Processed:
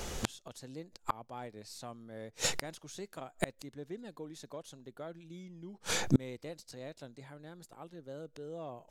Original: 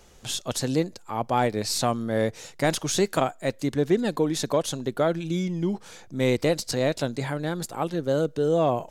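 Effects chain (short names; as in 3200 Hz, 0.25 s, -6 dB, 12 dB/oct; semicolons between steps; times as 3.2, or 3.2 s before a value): flipped gate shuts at -26 dBFS, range -35 dB; gain +13.5 dB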